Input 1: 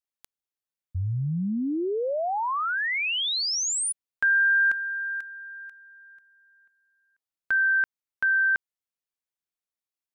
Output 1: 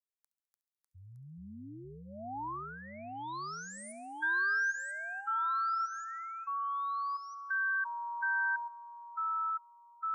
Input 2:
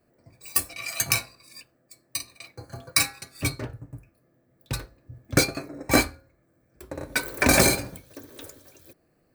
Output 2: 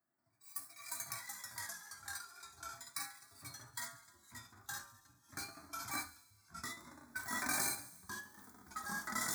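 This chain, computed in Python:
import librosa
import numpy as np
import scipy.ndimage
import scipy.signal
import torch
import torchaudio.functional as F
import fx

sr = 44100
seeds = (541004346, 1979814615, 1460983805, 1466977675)

y = fx.highpass(x, sr, hz=680.0, slope=6)
y = fx.echo_pitch(y, sr, ms=249, semitones=-3, count=3, db_per_echo=-3.0)
y = fx.hpss(y, sr, part='percussive', gain_db=-13)
y = fx.fixed_phaser(y, sr, hz=1200.0, stages=4)
y = fx.echo_wet_highpass(y, sr, ms=69, feedback_pct=69, hz=3600.0, wet_db=-16)
y = y * librosa.db_to_amplitude(-8.0)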